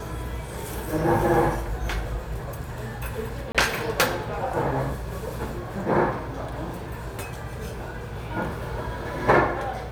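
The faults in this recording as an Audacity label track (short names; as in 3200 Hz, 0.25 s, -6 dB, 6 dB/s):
3.520000	3.550000	gap 26 ms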